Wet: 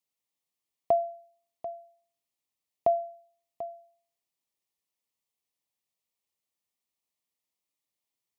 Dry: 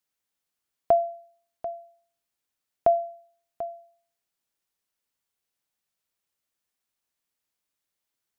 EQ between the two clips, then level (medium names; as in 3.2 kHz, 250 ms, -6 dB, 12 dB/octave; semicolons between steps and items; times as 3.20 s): high-pass 64 Hz; Butterworth band-stop 1.5 kHz, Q 2.7; -4.0 dB